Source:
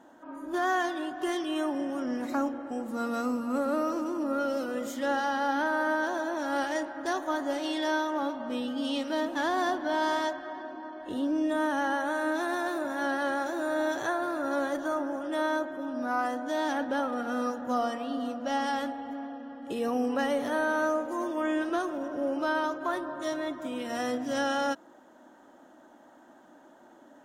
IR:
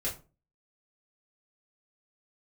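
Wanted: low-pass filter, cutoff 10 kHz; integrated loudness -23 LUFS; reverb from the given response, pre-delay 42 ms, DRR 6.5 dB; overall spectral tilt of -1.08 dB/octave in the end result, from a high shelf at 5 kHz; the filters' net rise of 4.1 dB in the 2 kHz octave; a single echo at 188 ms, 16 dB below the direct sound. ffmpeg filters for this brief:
-filter_complex "[0:a]lowpass=10000,equalizer=f=2000:t=o:g=6.5,highshelf=f=5000:g=-7,aecho=1:1:188:0.158,asplit=2[s0][s1];[1:a]atrim=start_sample=2205,adelay=42[s2];[s1][s2]afir=irnorm=-1:irlink=0,volume=0.299[s3];[s0][s3]amix=inputs=2:normalize=0,volume=1.78"

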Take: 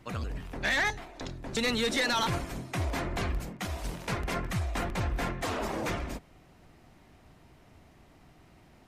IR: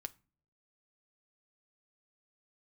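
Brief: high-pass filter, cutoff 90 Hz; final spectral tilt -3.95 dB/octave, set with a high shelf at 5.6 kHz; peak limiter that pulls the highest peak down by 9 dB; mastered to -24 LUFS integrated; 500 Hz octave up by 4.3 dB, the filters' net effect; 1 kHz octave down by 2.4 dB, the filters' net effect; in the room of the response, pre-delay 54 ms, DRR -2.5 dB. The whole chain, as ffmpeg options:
-filter_complex "[0:a]highpass=90,equalizer=f=500:t=o:g=6.5,equalizer=f=1000:t=o:g=-6,highshelf=f=5600:g=7,alimiter=level_in=1.12:limit=0.0631:level=0:latency=1,volume=0.891,asplit=2[s0][s1];[1:a]atrim=start_sample=2205,adelay=54[s2];[s1][s2]afir=irnorm=-1:irlink=0,volume=2[s3];[s0][s3]amix=inputs=2:normalize=0,volume=2.11"

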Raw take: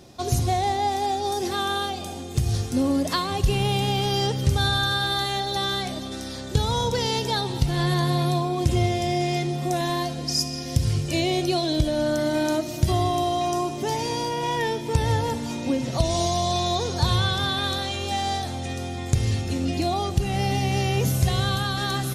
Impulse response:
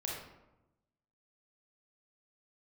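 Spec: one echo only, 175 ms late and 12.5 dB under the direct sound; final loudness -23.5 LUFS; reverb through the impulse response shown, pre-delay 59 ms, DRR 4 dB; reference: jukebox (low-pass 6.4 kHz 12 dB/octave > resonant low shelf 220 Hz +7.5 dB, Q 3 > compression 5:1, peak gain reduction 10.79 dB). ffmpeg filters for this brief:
-filter_complex "[0:a]aecho=1:1:175:0.237,asplit=2[s0][s1];[1:a]atrim=start_sample=2205,adelay=59[s2];[s1][s2]afir=irnorm=-1:irlink=0,volume=0.501[s3];[s0][s3]amix=inputs=2:normalize=0,lowpass=6400,lowshelf=f=220:t=q:w=3:g=7.5,acompressor=threshold=0.178:ratio=5,volume=0.75"

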